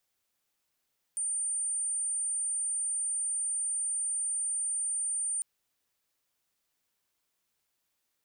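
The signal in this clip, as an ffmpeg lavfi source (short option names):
-f lavfi -i "sine=f=9020:d=4.25:r=44100,volume=-10.94dB"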